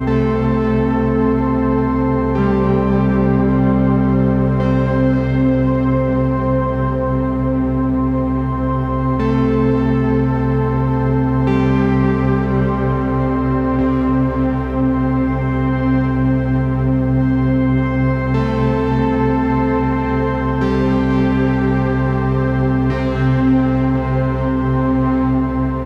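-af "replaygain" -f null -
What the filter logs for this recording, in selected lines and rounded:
track_gain = -0.1 dB
track_peak = 0.456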